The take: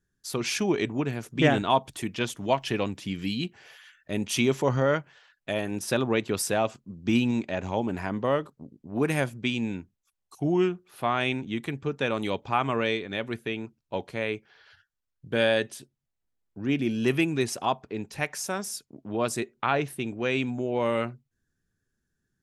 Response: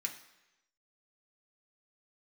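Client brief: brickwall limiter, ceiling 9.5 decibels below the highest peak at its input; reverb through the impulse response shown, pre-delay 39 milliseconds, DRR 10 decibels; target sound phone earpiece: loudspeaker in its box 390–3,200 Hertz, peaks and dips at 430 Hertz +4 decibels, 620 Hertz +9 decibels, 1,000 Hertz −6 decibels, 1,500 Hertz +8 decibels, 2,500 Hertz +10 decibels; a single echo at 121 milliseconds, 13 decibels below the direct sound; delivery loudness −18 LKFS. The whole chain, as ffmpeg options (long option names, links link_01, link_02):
-filter_complex "[0:a]alimiter=limit=-17dB:level=0:latency=1,aecho=1:1:121:0.224,asplit=2[link_01][link_02];[1:a]atrim=start_sample=2205,adelay=39[link_03];[link_02][link_03]afir=irnorm=-1:irlink=0,volume=-10dB[link_04];[link_01][link_04]amix=inputs=2:normalize=0,highpass=390,equalizer=frequency=430:width_type=q:width=4:gain=4,equalizer=frequency=620:width_type=q:width=4:gain=9,equalizer=frequency=1000:width_type=q:width=4:gain=-6,equalizer=frequency=1500:width_type=q:width=4:gain=8,equalizer=frequency=2500:width_type=q:width=4:gain=10,lowpass=frequency=3200:width=0.5412,lowpass=frequency=3200:width=1.3066,volume=9.5dB"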